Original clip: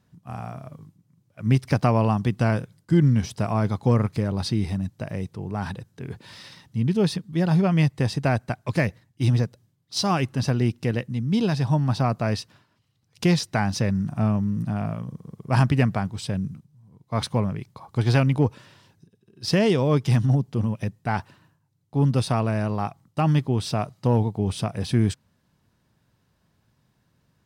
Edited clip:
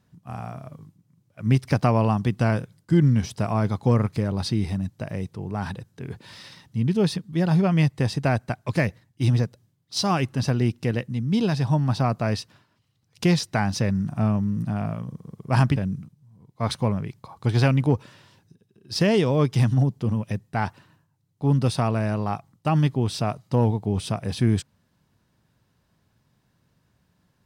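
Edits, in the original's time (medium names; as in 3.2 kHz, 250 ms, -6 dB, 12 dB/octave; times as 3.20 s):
15.76–16.28 s: delete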